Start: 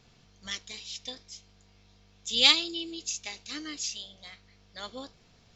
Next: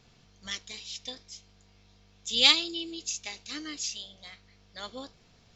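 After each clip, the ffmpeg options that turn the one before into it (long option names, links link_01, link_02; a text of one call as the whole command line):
ffmpeg -i in.wav -af anull out.wav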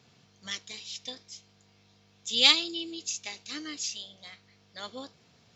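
ffmpeg -i in.wav -af "highpass=frequency=94:width=0.5412,highpass=frequency=94:width=1.3066" out.wav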